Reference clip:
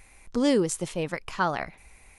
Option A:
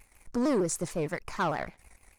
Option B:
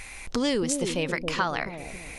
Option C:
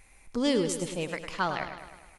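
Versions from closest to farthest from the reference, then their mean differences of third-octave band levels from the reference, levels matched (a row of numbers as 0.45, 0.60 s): A, C, B; 3.5, 5.0, 8.5 dB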